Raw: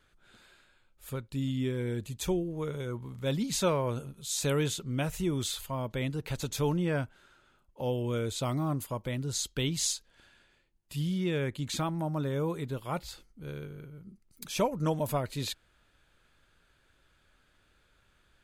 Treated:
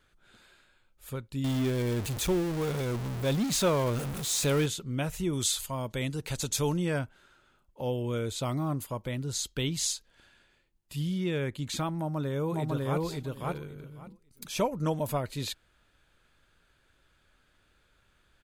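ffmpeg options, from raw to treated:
-filter_complex "[0:a]asettb=1/sr,asplit=3[a][b][c];[a]atrim=end=1.444[d];[b]atrim=start=1.44:end=4.66,asetpts=PTS-STARTPTS,afade=t=in:d=0.004:c=qsin,afade=t=out:st=3.216:d=0.004:c=qsin,aeval=exprs='val(0)+0.5*0.0282*sgn(val(0))':c=same[e];[c]atrim=start=4.656[f];[d][e]acrossfade=d=0.004:c1=hsin:c2=qsin[g];[g][f]acrossfade=d=0.004:c1=qsin:c2=hsin,asettb=1/sr,asplit=3[h][i][j];[h]atrim=end=5.334[k];[i]atrim=start=5.33:end=6.99,asetpts=PTS-STARTPTS,afade=t=in:d=0.004:c=qsin,afade=t=out:st=1.656:d=0.004:c=qsin,equalizer=f=7.9k:w=0.6:g=9[l];[j]atrim=start=6.986[m];[k][l]acrossfade=d=0.004:c1=hsin:c2=qsin[n];[n][m]acrossfade=d=0.004:c1=qsin:c2=hsin,asplit=2[o][p];[p]afade=t=in:st=11.97:d=0.01,afade=t=out:st=13.02:d=0.01,aecho=0:1:550|1100|1650:0.944061|0.141609|0.0212414[q];[o][q]amix=inputs=2:normalize=0"

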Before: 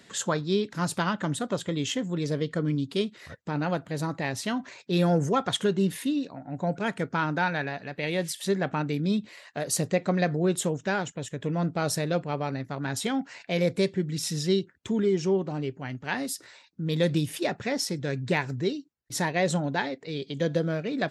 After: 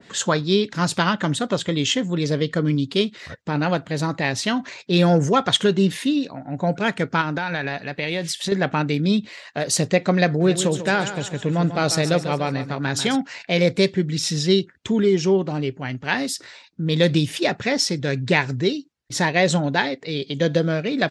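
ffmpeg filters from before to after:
-filter_complex "[0:a]asettb=1/sr,asplit=3[a][b][c];[a]atrim=end=7.214[d];[b]atrim=start=7.21:end=8.52,asetpts=PTS-STARTPTS,afade=t=in:d=0.004:c=qsin,afade=t=out:st=1.306:d=0.004:c=qsin,acompressor=threshold=-27dB:ratio=10:attack=3.2:release=140:knee=1:detection=peak[e];[c]atrim=start=8.516[f];[d][e]acrossfade=d=0.004:c1=hsin:c2=qsin[g];[g][f]acrossfade=d=0.004:c1=qsin:c2=hsin,asplit=3[h][i][j];[h]afade=t=out:st=10.4:d=0.02[k];[i]aecho=1:1:142|284|426|568|710:0.282|0.124|0.0546|0.024|0.0106,afade=t=in:st=10.4:d=0.02,afade=t=out:st=13.15:d=0.02[l];[j]afade=t=in:st=13.15:d=0.02[m];[k][l][m]amix=inputs=3:normalize=0,lowpass=6.3k,adynamicequalizer=threshold=0.00891:dfrequency=1900:dqfactor=0.7:tfrequency=1900:tqfactor=0.7:attack=5:release=100:ratio=0.375:range=2.5:mode=boostabove:tftype=highshelf,volume=6.5dB"

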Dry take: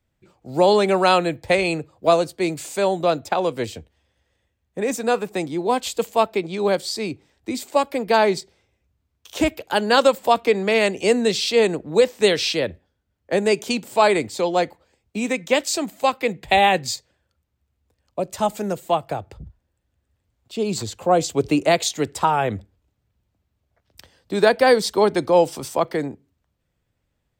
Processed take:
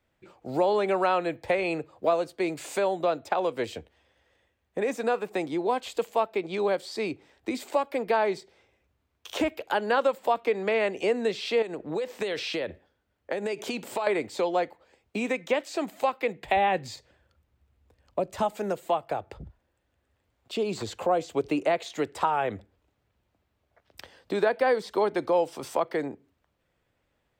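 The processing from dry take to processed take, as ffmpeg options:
-filter_complex "[0:a]asettb=1/sr,asplit=3[a][b][c];[a]atrim=end=11.624[d];[b]atrim=start=11.62:end=14.07,asetpts=PTS-STARTPTS,afade=t=in:d=0.004:c=qsin,afade=t=out:st=2.446:d=0.004:c=qsin,acompressor=threshold=-24dB:ratio=10:attack=3.2:release=140:knee=1:detection=peak[e];[c]atrim=start=14.066[f];[d][e]acrossfade=d=0.004:c1=hsin:c2=qsin[g];[g][f]acrossfade=d=0.004:c1=qsin:c2=hsin,asettb=1/sr,asplit=3[h][i][j];[h]atrim=end=16.564[k];[i]atrim=start=16.56:end=18.43,asetpts=PTS-STARTPTS,afade=t=in:d=0.004:c=qsin,afade=t=out:st=1.866:d=0.004:c=qsin,lowshelf=f=170:g=11.5[l];[j]atrim=start=18.426[m];[k][l]acrossfade=d=0.004:c1=hsin:c2=qsin[n];[n][m]acrossfade=d=0.004:c1=qsin:c2=hsin,acrossover=split=2600[o][p];[p]acompressor=threshold=-32dB:ratio=4:attack=1:release=60[q];[o][q]amix=inputs=2:normalize=0,bass=f=250:g=-10,treble=f=4k:g=-8,acompressor=threshold=-36dB:ratio=2,volume=5dB"

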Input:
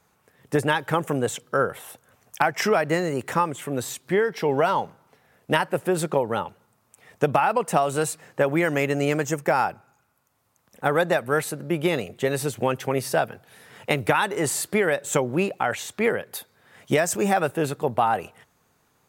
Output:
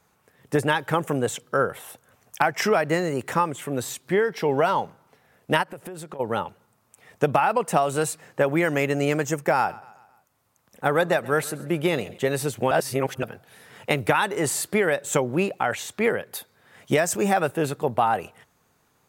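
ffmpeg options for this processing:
-filter_complex "[0:a]asplit=3[a][b][c];[a]afade=t=out:st=5.62:d=0.02[d];[b]acompressor=threshold=-33dB:ratio=16:attack=3.2:release=140:knee=1:detection=peak,afade=t=in:st=5.62:d=0.02,afade=t=out:st=6.19:d=0.02[e];[c]afade=t=in:st=6.19:d=0.02[f];[d][e][f]amix=inputs=3:normalize=0,asettb=1/sr,asplit=3[g][h][i];[g]atrim=end=9.554[j];[h]atrim=start=9.55:end=12.18,asetpts=PTS-STARTPTS,afade=t=in:d=0.004:c=qsin,afade=t=out:st=2.626:d=0.004:c=qsin,aecho=1:1:134|268|402|536:0.0944|0.0481|0.0246|0.0125,atrim=end_sample=115983[k];[i]atrim=start=12.176[l];[j][k]acrossfade=d=0.004:c1=hsin:c2=qsin[m];[m][l]acrossfade=d=0.004:c1=qsin:c2=hsin,asplit=3[n][o][p];[n]atrim=end=12.712[q];[o]atrim=start=12.708:end=13.232,asetpts=PTS-STARTPTS,areverse[r];[p]atrim=start=13.228[s];[q][r]acrossfade=d=0.004:c1=hsin:c2=hsin[t];[t][s]acrossfade=d=0.004:c1=hsin:c2=hsin"

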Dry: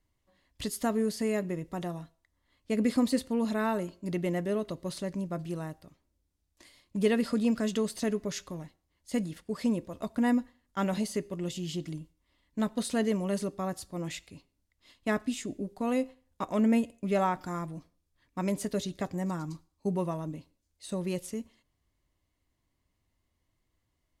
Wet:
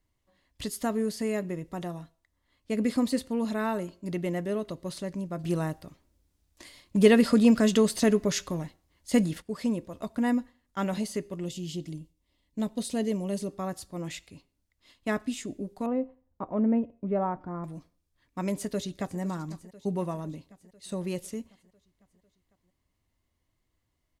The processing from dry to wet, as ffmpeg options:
-filter_complex "[0:a]asettb=1/sr,asplit=3[a][b][c];[a]atrim=end=11.454[d];[b]atrim=start=11.45:end=13.49,asetpts=PTS-STARTPTS,afade=t=in:d=0.004:c=qsin,afade=t=out:st=2.036:d=0.004:c=qsin,equalizer=f=1.4k:t=o:w=1.1:g=-10[e];[c]atrim=start=13.486[f];[d][e]acrossfade=d=0.004:c1=hsin:c2=qsin[g];[g][f]acrossfade=d=0.004:c1=qsin:c2=hsin,asettb=1/sr,asplit=3[h][i][j];[h]atrim=end=15.864[k];[i]atrim=start=15.86:end=17.64,asetpts=PTS-STARTPTS,afade=t=in:d=0.004:c=qsin,afade=t=out:st=1.776:d=0.004:c=qsin,lowpass=1k[l];[j]atrim=start=17.636[m];[k][l]acrossfade=d=0.004:c1=hsin:c2=qsin[n];[n][m]acrossfade=d=0.004:c1=qsin:c2=hsin,asplit=2[o][p];[p]afade=t=in:st=18.5:d=0.01,afade=t=out:st=19.2:d=0.01,aecho=0:1:500|1000|1500|2000|2500|3000|3500:0.149624|0.0972553|0.063216|0.0410904|0.0267087|0.0173607|0.0112844[q];[o][q]amix=inputs=2:normalize=0,asplit=3[r][s][t];[r]atrim=end=5.442[u];[s]atrim=start=5.438:end=9.422,asetpts=PTS-STARTPTS,volume=7.5dB[v];[t]atrim=start=9.418[w];[u][v]acrossfade=d=0.004:c1=hsin:c2=hsin[x];[x][w]acrossfade=d=0.004:c1=hsin:c2=hsin"

